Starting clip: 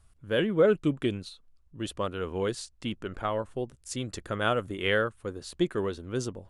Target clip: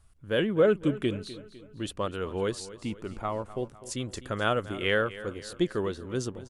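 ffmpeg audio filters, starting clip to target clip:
ffmpeg -i in.wav -filter_complex "[0:a]asettb=1/sr,asplit=3[link_01][link_02][link_03];[link_01]atrim=end=2.604[link_04];[link_02]atrim=start=2.6:end=3.42,asetpts=PTS-STARTPTS,afade=type=in:duration=0.004:curve=qsin,afade=type=out:start_time=0.816:duration=0.004:curve=qsin,equalizer=frequency=500:width_type=o:width=0.33:gain=-6,equalizer=frequency=1600:width_type=o:width=0.33:gain=-10,equalizer=frequency=3150:width_type=o:width=0.33:gain=-10[link_05];[link_03]atrim=start=3.416[link_06];[link_04][link_05]acrossfade=duration=0.004:curve1=hsin:curve2=qsin[link_07];[link_07][link_06]acrossfade=duration=0.004:curve1=qsin:curve2=hsin,aecho=1:1:252|504|756|1008:0.158|0.0777|0.0381|0.0186" out.wav

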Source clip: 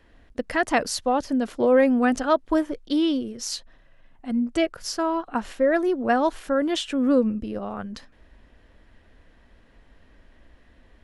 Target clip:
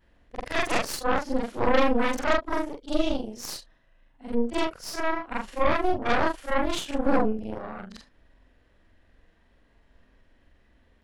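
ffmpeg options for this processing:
ffmpeg -i in.wav -af "afftfilt=real='re':imag='-im':win_size=4096:overlap=0.75,aeval=exprs='0.282*(cos(1*acos(clip(val(0)/0.282,-1,1)))-cos(1*PI/2))+0.112*(cos(6*acos(clip(val(0)/0.282,-1,1)))-cos(6*PI/2))':channel_layout=same,volume=-2dB" out.wav

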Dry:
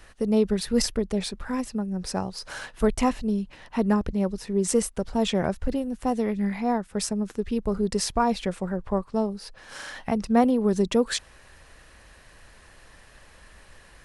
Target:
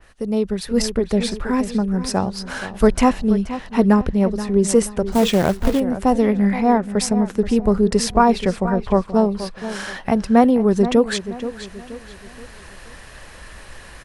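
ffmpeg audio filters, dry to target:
ffmpeg -i in.wav -filter_complex "[0:a]asplit=2[link_01][link_02];[link_02]adelay=478,lowpass=frequency=3700:poles=1,volume=-12.5dB,asplit=2[link_03][link_04];[link_04]adelay=478,lowpass=frequency=3700:poles=1,volume=0.36,asplit=2[link_05][link_06];[link_06]adelay=478,lowpass=frequency=3700:poles=1,volume=0.36,asplit=2[link_07][link_08];[link_08]adelay=478,lowpass=frequency=3700:poles=1,volume=0.36[link_09];[link_01][link_03][link_05][link_07][link_09]amix=inputs=5:normalize=0,dynaudnorm=framelen=600:gausssize=3:maxgain=11dB,asettb=1/sr,asplit=3[link_10][link_11][link_12];[link_10]atrim=end=5.124[link_13];[link_11]atrim=start=5.12:end=5.8,asetpts=PTS-STARTPTS,afade=type=in:duration=0.004:curve=qsin,afade=type=out:start_time=0.676:duration=0.004:curve=qsin,acrusher=bits=3:mode=log:mix=0:aa=0.000001[link_14];[link_12]atrim=start=5.796[link_15];[link_13][link_14]acrossfade=duration=0.004:curve1=hsin:curve2=qsin[link_16];[link_16][link_15]acrossfade=duration=0.004:curve1=qsin:curve2=hsin,adynamicequalizer=threshold=0.0141:dfrequency=3100:dqfactor=0.7:tfrequency=3100:tqfactor=0.7:attack=5:release=100:ratio=0.375:range=3:mode=cutabove:tftype=highshelf" out.wav

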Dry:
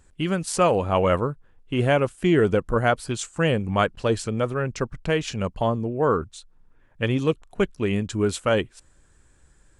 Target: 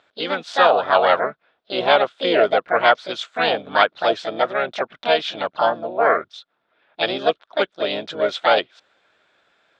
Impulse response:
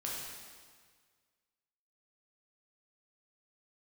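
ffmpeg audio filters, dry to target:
-filter_complex "[0:a]asplit=3[link_01][link_02][link_03];[link_02]asetrate=58866,aresample=44100,atempo=0.749154,volume=-7dB[link_04];[link_03]asetrate=66075,aresample=44100,atempo=0.66742,volume=-4dB[link_05];[link_01][link_04][link_05]amix=inputs=3:normalize=0,highpass=460,equalizer=frequency=650:width_type=q:width=4:gain=7,equalizer=frequency=1400:width_type=q:width=4:gain=7,equalizer=frequency=3500:width_type=q:width=4:gain=10,lowpass=frequency=4600:width=0.5412,lowpass=frequency=4600:width=1.3066,volume=1dB"

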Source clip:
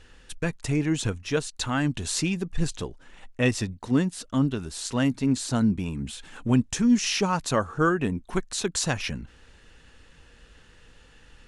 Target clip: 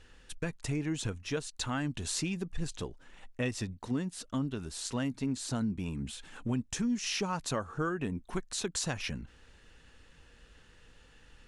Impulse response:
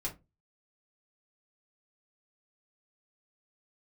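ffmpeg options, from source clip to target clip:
-af "acompressor=threshold=-25dB:ratio=3,volume=-5dB"

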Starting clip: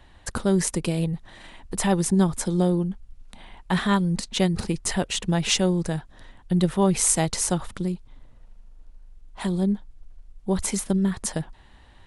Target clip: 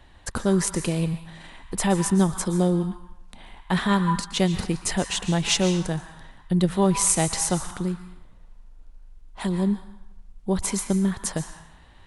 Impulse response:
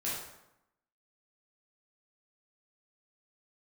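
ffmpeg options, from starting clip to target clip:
-filter_complex "[0:a]asplit=2[link_01][link_02];[link_02]lowshelf=frequency=720:width_type=q:width=3:gain=-11[link_03];[1:a]atrim=start_sample=2205,adelay=118[link_04];[link_03][link_04]afir=irnorm=-1:irlink=0,volume=-13.5dB[link_05];[link_01][link_05]amix=inputs=2:normalize=0"

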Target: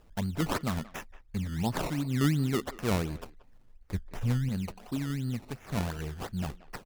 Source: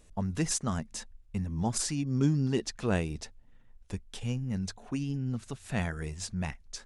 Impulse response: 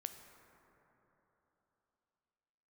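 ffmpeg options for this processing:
-filter_complex "[0:a]acrusher=samples=19:mix=1:aa=0.000001:lfo=1:lforange=19:lforate=2.8,asettb=1/sr,asplit=3[link_01][link_02][link_03];[link_01]atrim=end=3.944[link_04];[link_02]atrim=start=3.94:end=4.49,asetpts=PTS-STARTPTS,afade=type=in:duration=0.004:curve=qsin,afade=type=out:start_time=0.546:duration=0.004:curve=qsin,lowshelf=frequency=190:gain=8[link_05];[link_03]atrim=start=4.486[link_06];[link_04][link_05]acrossfade=duration=0.004:curve1=hsin:curve2=qsin[link_07];[link_07][link_06]acrossfade=duration=0.004:curve1=qsin:curve2=hsin,asplit=2[link_08][link_09];[link_09]adelay=180,highpass=300,lowpass=3400,asoftclip=type=hard:threshold=-24dB,volume=-17dB[link_10];[link_08][link_10]amix=inputs=2:normalize=0"

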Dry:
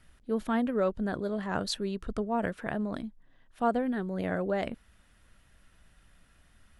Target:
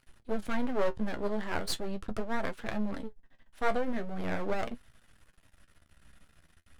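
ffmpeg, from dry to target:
ffmpeg -i in.wav -af "aeval=exprs='max(val(0),0)':channel_layout=same,flanger=delay=7.4:depth=7.5:regen=48:speed=0.41:shape=triangular,volume=7dB" out.wav

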